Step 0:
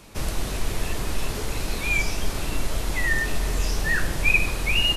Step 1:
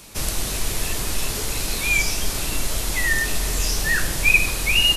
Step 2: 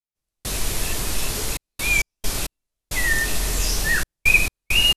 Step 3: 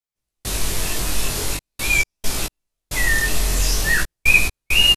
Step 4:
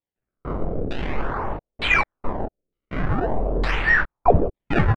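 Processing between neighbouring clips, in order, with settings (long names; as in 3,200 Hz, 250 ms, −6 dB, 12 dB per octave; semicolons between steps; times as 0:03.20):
high-shelf EQ 3,300 Hz +11.5 dB
gate pattern "..xxxxx.x.x" 67 BPM −60 dB
chorus effect 0.44 Hz, delay 15.5 ms, depth 7.5 ms; level +5 dB
sample-and-hold swept by an LFO 29×, swing 160% 0.44 Hz; auto-filter low-pass saw down 1.1 Hz 400–3,600 Hz; level −4 dB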